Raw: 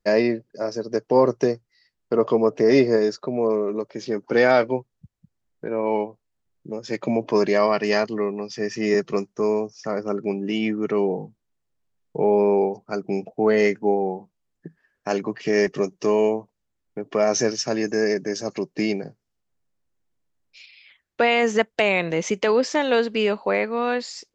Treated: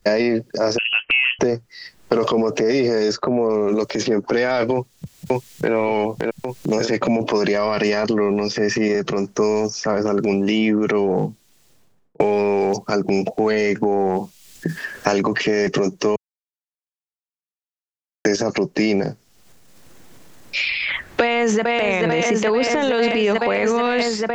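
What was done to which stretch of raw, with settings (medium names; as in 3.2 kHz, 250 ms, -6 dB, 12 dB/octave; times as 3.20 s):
0.78–1.39 s: frequency inversion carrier 3.1 kHz
4.73–5.73 s: echo throw 570 ms, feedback 45%, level -4.5 dB
8.88–9.35 s: compression 4:1, threshold -29 dBFS
11.14–12.20 s: studio fade out
16.16–18.25 s: mute
21.21–21.81 s: echo throw 440 ms, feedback 80%, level -6.5 dB
whole clip: transient shaper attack -5 dB, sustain +9 dB; loudness maximiser +15.5 dB; three bands compressed up and down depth 100%; trim -9 dB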